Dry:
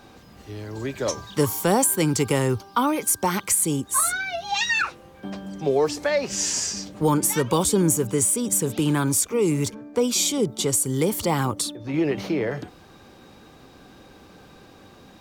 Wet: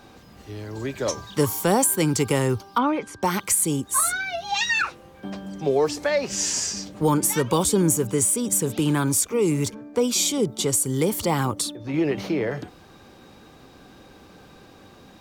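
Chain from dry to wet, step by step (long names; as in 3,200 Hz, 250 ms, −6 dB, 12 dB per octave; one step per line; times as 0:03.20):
0:02.78–0:03.23: low-pass filter 2,800 Hz 12 dB per octave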